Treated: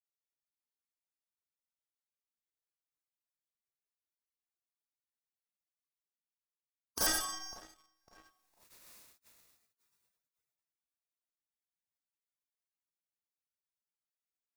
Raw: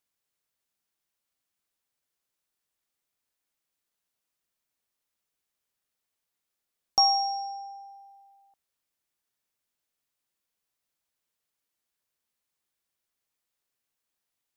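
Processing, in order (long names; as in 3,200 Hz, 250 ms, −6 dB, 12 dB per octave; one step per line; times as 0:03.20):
mains-hum notches 60/120/180/240 Hz
four-comb reverb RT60 0.66 s, combs from 30 ms, DRR −7.5 dB
reversed playback
upward compression, threshold −32 dBFS
reversed playback
harmonic generator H 2 −23 dB, 3 −42 dB, 6 −26 dB, 8 −18 dB, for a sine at −4 dBFS
on a send: feedback echo with a low-pass in the loop 551 ms, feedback 53%, low-pass 2,000 Hz, level −19 dB
on the sum: gate on every frequency bin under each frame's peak −25 dB weak
notch filter 3,100 Hz, Q 6.7
leveller curve on the samples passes 2
level −7.5 dB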